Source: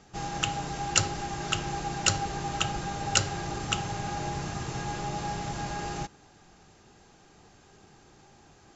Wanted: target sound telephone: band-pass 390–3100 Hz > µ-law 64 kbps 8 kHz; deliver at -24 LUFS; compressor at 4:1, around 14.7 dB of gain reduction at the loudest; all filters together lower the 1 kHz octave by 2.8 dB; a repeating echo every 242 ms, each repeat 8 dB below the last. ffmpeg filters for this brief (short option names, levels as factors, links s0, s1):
-af "equalizer=f=1000:t=o:g=-3.5,acompressor=threshold=0.0141:ratio=4,highpass=390,lowpass=3100,aecho=1:1:242|484|726|968|1210:0.398|0.159|0.0637|0.0255|0.0102,volume=8.91" -ar 8000 -c:a pcm_mulaw